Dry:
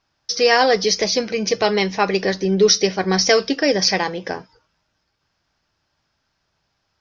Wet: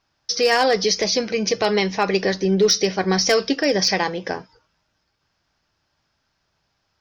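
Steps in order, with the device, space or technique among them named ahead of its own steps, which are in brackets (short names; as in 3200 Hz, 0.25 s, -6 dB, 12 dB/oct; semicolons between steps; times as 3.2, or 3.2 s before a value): clipper into limiter (hard clip -7 dBFS, distortion -26 dB; limiter -9.5 dBFS, peak gain reduction 2.5 dB)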